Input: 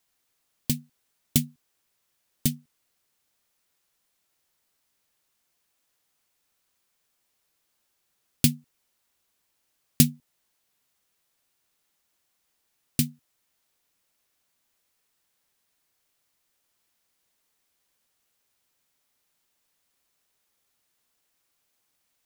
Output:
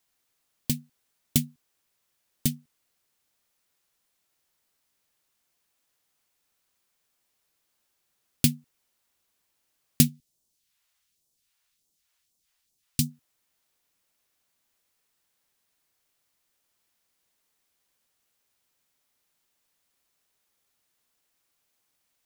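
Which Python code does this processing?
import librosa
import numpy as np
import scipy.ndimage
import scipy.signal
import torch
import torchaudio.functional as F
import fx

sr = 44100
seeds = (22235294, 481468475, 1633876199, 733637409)

y = fx.phaser_stages(x, sr, stages=2, low_hz=210.0, high_hz=1700.0, hz=fx.line((10.07, 0.79), (13.09, 3.4)), feedback_pct=45, at=(10.07, 13.09), fade=0.02)
y = y * 10.0 ** (-1.0 / 20.0)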